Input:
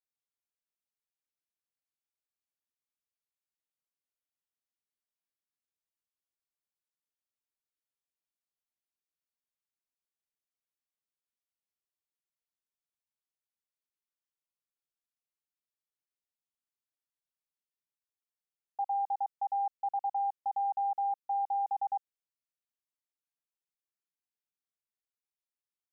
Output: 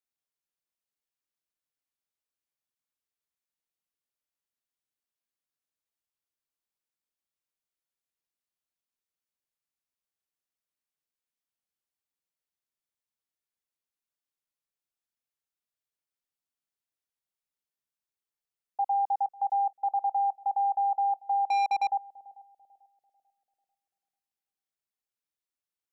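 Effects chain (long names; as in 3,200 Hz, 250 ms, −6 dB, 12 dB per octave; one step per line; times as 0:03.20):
dynamic equaliser 730 Hz, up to +5 dB, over −44 dBFS, Q 0.71
0:21.46–0:21.90: leveller curve on the samples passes 2
on a send: bucket-brigade delay 442 ms, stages 2,048, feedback 42%, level −19 dB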